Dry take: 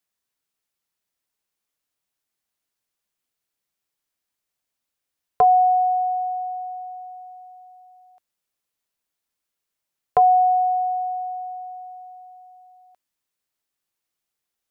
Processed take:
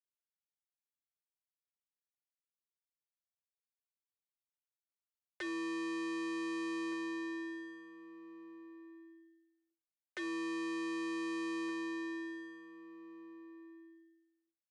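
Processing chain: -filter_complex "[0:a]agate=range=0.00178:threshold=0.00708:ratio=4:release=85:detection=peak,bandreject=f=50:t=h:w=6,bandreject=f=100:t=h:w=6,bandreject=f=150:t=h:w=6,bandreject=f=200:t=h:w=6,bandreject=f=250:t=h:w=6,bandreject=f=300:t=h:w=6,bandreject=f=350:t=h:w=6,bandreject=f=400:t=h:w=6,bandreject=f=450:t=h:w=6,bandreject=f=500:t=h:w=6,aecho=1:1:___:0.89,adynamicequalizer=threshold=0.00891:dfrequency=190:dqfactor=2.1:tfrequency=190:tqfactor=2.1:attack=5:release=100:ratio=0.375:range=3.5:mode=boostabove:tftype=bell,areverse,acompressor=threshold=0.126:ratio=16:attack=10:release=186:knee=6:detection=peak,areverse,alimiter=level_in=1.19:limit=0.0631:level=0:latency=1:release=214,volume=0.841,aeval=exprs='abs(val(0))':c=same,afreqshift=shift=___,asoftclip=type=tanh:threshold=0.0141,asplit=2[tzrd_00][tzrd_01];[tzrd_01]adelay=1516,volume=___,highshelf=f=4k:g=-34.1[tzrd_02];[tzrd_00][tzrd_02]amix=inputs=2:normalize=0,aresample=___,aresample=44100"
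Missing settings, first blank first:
4.2, 330, 0.224, 22050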